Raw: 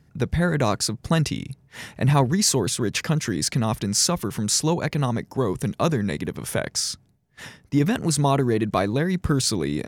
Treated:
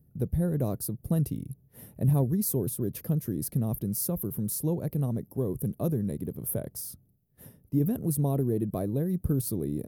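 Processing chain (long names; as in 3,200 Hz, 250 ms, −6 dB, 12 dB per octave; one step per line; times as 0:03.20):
drawn EQ curve 130 Hz 0 dB, 560 Hz −4 dB, 870 Hz −15 dB, 2,100 Hz −24 dB, 7,400 Hz −18 dB, 12,000 Hz +12 dB
level −4 dB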